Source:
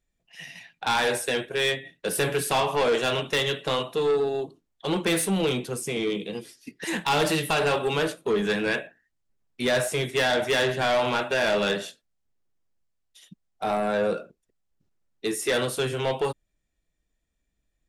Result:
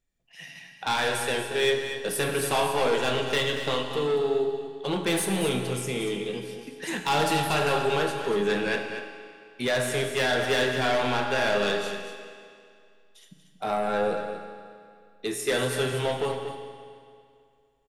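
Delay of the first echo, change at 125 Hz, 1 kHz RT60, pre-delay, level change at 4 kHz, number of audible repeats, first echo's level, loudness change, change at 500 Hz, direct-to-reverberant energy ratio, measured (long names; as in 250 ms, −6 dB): 235 ms, 0.0 dB, 2.3 s, 7 ms, −1.0 dB, 1, −9.5 dB, −1.0 dB, −1.0 dB, 3.5 dB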